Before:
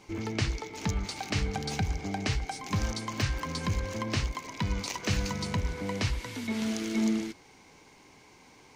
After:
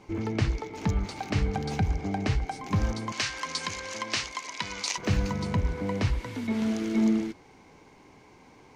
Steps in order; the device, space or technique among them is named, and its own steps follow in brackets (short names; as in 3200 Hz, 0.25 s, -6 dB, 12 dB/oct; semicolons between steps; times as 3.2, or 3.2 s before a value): 3.12–4.98 weighting filter ITU-R 468; through cloth (high shelf 2200 Hz -11 dB); gain +4 dB